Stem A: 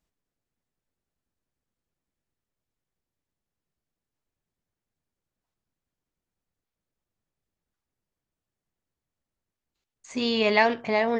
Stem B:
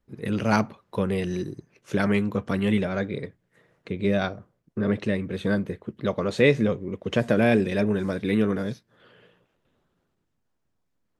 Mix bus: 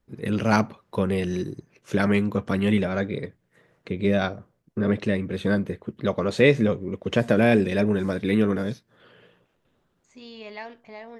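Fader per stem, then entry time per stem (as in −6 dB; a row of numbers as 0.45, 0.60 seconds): −17.5, +1.5 decibels; 0.00, 0.00 seconds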